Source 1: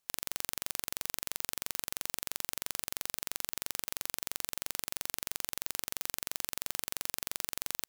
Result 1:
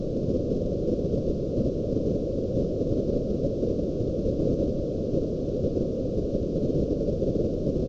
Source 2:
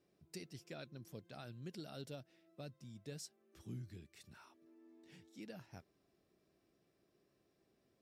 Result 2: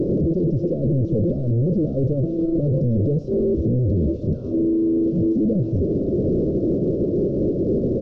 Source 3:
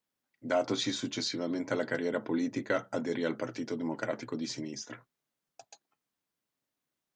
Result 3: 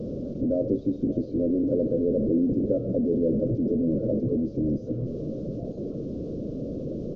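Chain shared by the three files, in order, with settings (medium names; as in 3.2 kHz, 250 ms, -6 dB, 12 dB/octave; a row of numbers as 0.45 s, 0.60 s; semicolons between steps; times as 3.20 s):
one-bit delta coder 32 kbps, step -27 dBFS; elliptic low-pass 540 Hz, stop band 40 dB; in parallel at +2 dB: level held to a coarse grid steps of 9 dB; on the sum: delay 576 ms -16 dB; peak normalisation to -12 dBFS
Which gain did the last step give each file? +14.5 dB, +9.5 dB, +4.0 dB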